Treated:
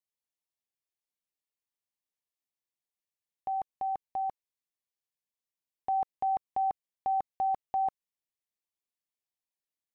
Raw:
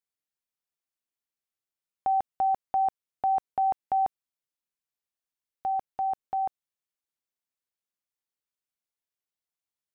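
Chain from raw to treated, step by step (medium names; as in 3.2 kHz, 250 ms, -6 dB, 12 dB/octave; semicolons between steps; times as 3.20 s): reverse the whole clip; Butterworth band-stop 1.4 kHz, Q 3.4; trim -4 dB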